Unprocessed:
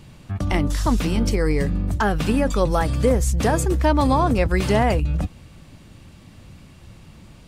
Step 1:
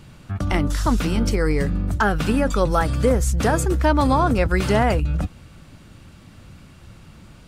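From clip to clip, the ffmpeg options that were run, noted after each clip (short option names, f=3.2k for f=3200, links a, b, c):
-af "equalizer=f=1.4k:w=4.7:g=7"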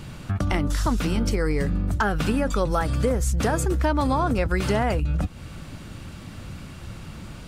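-af "acompressor=threshold=-31dB:ratio=2.5,volume=6.5dB"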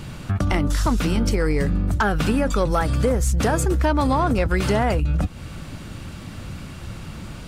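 -af "asoftclip=type=tanh:threshold=-12dB,volume=3.5dB"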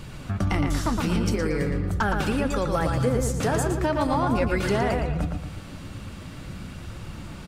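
-filter_complex "[0:a]flanger=delay=1.7:depth=9.9:regen=66:speed=0.43:shape=triangular,asplit=2[a][b];[b]adelay=115,lowpass=f=4k:p=1,volume=-4dB,asplit=2[c][d];[d]adelay=115,lowpass=f=4k:p=1,volume=0.43,asplit=2[e][f];[f]adelay=115,lowpass=f=4k:p=1,volume=0.43,asplit=2[g][h];[h]adelay=115,lowpass=f=4k:p=1,volume=0.43,asplit=2[i][j];[j]adelay=115,lowpass=f=4k:p=1,volume=0.43[k];[a][c][e][g][i][k]amix=inputs=6:normalize=0"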